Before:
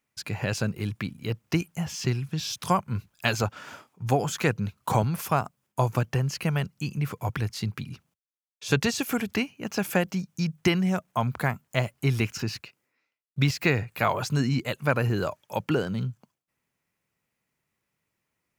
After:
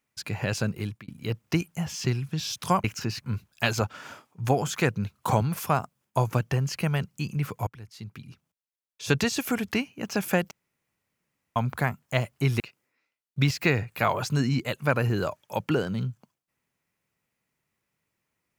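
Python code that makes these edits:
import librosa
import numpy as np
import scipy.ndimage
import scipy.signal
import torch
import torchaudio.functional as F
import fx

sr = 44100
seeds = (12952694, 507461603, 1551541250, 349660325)

y = fx.edit(x, sr, fx.fade_out_span(start_s=0.8, length_s=0.28),
    fx.fade_in_from(start_s=7.29, length_s=1.52, floor_db=-22.0),
    fx.room_tone_fill(start_s=10.13, length_s=1.05),
    fx.move(start_s=12.22, length_s=0.38, to_s=2.84), tone=tone)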